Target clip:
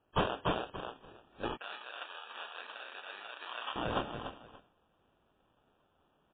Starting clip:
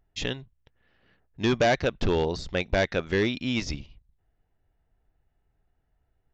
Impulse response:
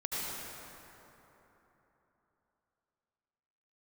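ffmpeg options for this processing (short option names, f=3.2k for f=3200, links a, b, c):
-filter_complex "[0:a]asplit=2[a][b];[b]adelay=26,volume=-5dB[c];[a][c]amix=inputs=2:normalize=0,aecho=1:1:288|576|864:0.562|0.118|0.0248,acompressor=threshold=-33dB:ratio=10,aderivative,acrusher=samples=21:mix=1:aa=0.000001,asoftclip=type=tanh:threshold=-38dB,asettb=1/sr,asplit=3[d][e][f];[d]atrim=end=1.574[g];[e]atrim=start=1.57:end=3.76,asetpts=PTS-STARTPTS,afade=t=in:d=0.004:c=qsin,afade=t=out:st=2.186:d=0.004:c=qsin,highpass=1.3k[h];[f]atrim=start=3.756[i];[g][h]acrossfade=d=0.004:c1=hsin:c2=qsin[j];[j][i]acrossfade=d=0.004:c1=qsin:c2=hsin,volume=17dB" -ar 8000 -c:a libmp3lame -b:a 16k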